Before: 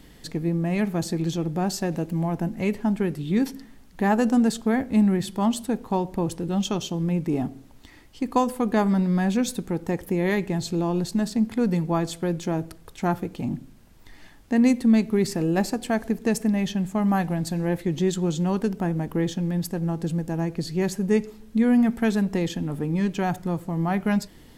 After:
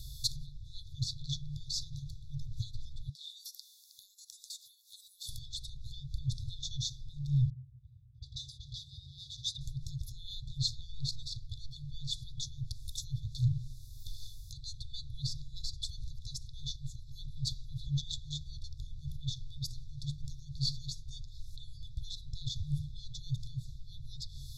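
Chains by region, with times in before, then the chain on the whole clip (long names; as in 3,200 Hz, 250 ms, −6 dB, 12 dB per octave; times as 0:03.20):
0:03.09–0:05.29: high-pass filter 1,100 Hz 24 dB per octave + downward compressor 10 to 1, threshold −47 dBFS
0:07.50–0:09.61: lower of the sound and its delayed copy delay 0.82 ms + high-pass filter 110 Hz + low-pass that shuts in the quiet parts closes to 330 Hz, open at −21.5 dBFS
whole clip: treble cut that deepens with the level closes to 2,700 Hz, closed at −21.5 dBFS; parametric band 8,500 Hz −7 dB 0.29 octaves; brick-wall band-stop 150–3,400 Hz; level +8 dB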